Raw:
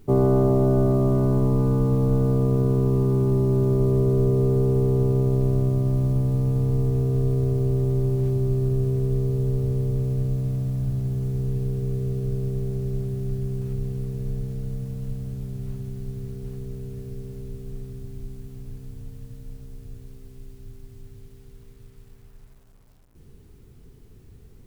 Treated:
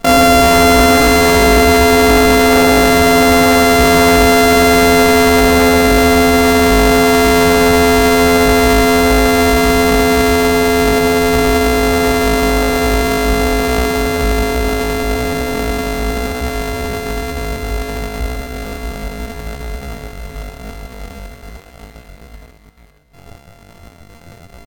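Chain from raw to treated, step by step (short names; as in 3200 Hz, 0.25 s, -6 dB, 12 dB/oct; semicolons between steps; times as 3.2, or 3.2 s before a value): sample sorter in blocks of 128 samples; feedback echo 0.448 s, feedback 60%, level -10 dB; sample leveller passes 2; pitch shift +12 st; gain +6 dB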